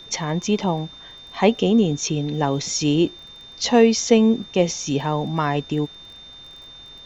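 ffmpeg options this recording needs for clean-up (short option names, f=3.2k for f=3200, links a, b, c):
-af "adeclick=t=4,bandreject=f=3.6k:w=30,agate=range=-21dB:threshold=-34dB"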